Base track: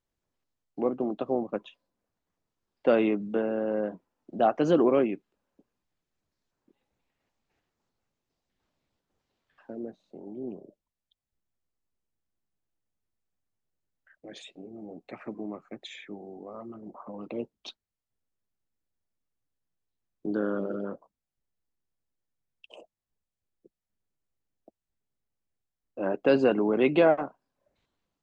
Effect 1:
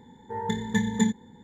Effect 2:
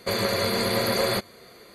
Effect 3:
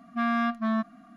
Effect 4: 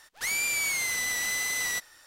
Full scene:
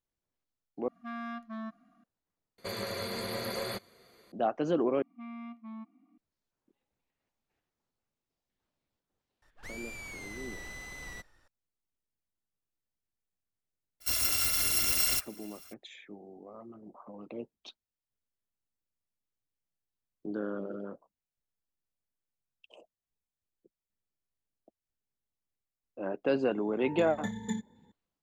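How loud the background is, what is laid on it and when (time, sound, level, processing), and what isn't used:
base track -6.5 dB
0.88 s: replace with 3 -13.5 dB
2.58 s: replace with 2 -12 dB
5.02 s: replace with 3 -3.5 dB + vowel filter u
9.42 s: add 4 -10.5 dB + tilt EQ -4 dB/octave
14.00 s: add 2 -4 dB, fades 0.02 s + bit-reversed sample order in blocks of 256 samples
26.49 s: add 1 -11.5 dB

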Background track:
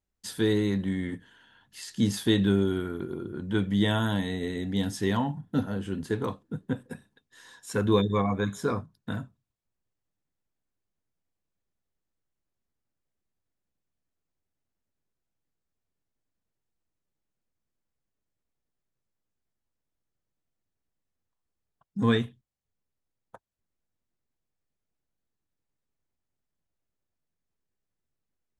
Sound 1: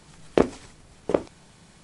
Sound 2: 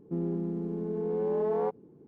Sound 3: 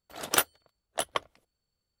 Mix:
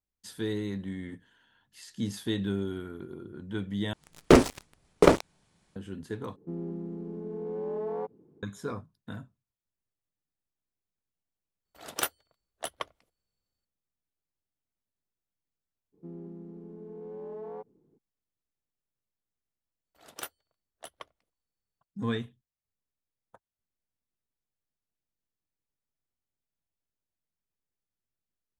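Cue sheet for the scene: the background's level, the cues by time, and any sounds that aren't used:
background track -7.5 dB
3.93 s: replace with 1 -6 dB + waveshaping leveller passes 5
6.36 s: replace with 2 -5 dB
11.65 s: add 3 -6 dB
15.92 s: add 2 -12 dB, fades 0.02 s
19.85 s: add 3 -15.5 dB

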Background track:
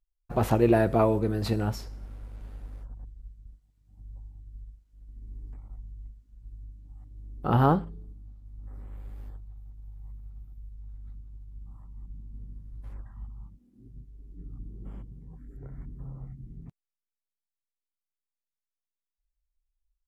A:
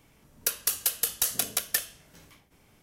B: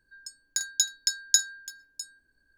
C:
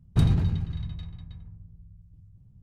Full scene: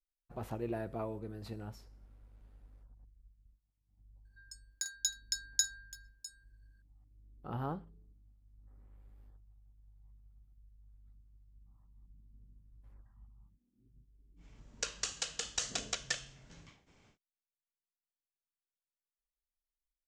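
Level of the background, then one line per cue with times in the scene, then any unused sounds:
background track -17 dB
4.25 s: add B -9.5 dB
14.36 s: add A -4 dB, fades 0.10 s + elliptic low-pass 7.3 kHz, stop band 50 dB
not used: C

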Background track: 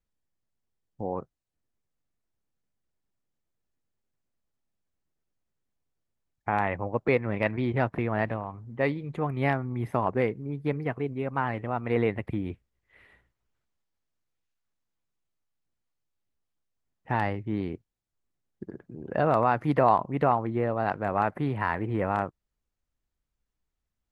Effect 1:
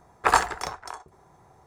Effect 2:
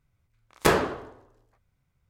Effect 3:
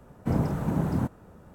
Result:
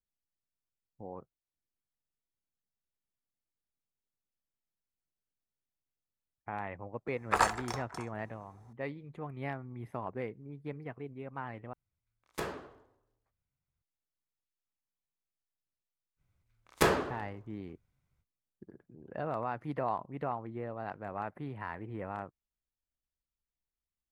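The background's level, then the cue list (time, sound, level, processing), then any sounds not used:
background track -12.5 dB
7.07 s: add 1 -7.5 dB
11.73 s: replace with 2 -17 dB
16.16 s: add 2 -5.5 dB, fades 0.05 s
not used: 3

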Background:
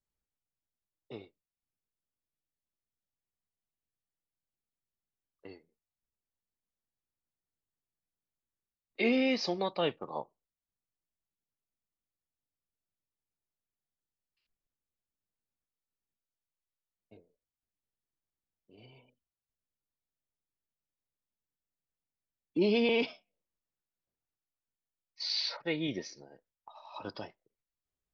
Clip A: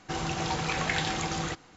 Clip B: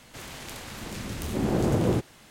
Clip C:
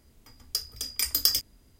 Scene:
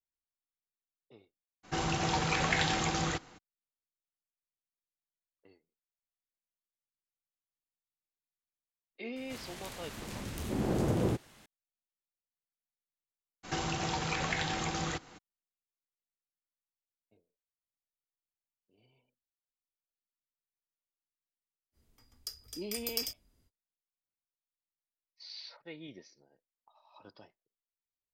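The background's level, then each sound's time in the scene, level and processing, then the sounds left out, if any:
background -13.5 dB
1.63 s: add A -0.5 dB, fades 0.02 s
9.16 s: add B -6 dB
13.43 s: add A -4 dB, fades 0.02 s + three bands compressed up and down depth 70%
21.72 s: add C -12 dB, fades 0.05 s

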